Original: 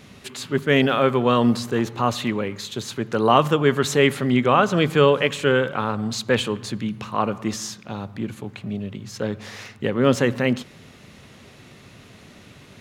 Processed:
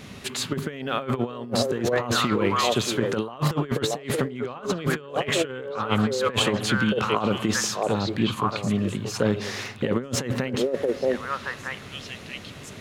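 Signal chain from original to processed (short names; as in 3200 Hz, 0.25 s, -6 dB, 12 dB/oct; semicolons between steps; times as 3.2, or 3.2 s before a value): delay with a stepping band-pass 0.626 s, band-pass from 500 Hz, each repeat 1.4 oct, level -2.5 dB; negative-ratio compressor -24 dBFS, ratio -0.5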